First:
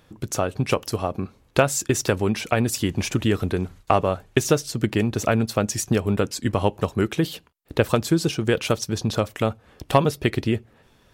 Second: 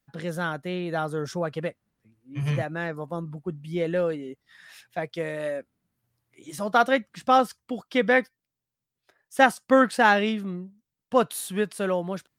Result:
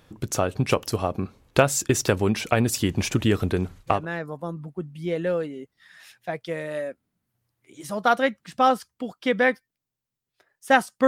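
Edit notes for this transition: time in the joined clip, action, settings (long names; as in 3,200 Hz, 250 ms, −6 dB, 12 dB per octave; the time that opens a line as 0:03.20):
first
0:03.96: continue with second from 0:02.65, crossfade 0.20 s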